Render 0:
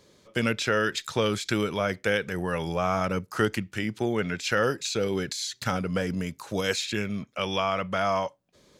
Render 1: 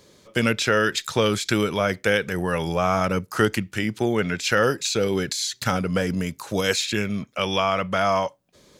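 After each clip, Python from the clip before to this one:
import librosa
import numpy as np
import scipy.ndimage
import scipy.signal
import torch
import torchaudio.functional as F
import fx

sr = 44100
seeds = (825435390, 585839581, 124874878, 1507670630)

y = fx.high_shelf(x, sr, hz=8300.0, db=4.5)
y = y * librosa.db_to_amplitude(4.5)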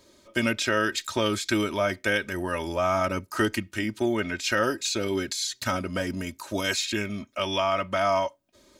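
y = x + 0.73 * np.pad(x, (int(3.2 * sr / 1000.0), 0))[:len(x)]
y = y * librosa.db_to_amplitude(-5.0)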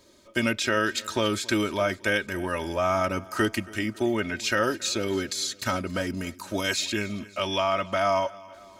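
y = fx.echo_feedback(x, sr, ms=276, feedback_pct=57, wet_db=-21.5)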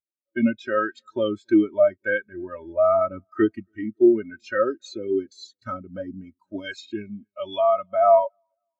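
y = fx.spectral_expand(x, sr, expansion=2.5)
y = y * librosa.db_to_amplitude(2.5)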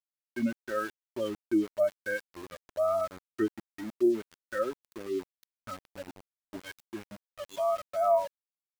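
y = np.where(np.abs(x) >= 10.0 ** (-31.5 / 20.0), x, 0.0)
y = y * librosa.db_to_amplitude(-9.0)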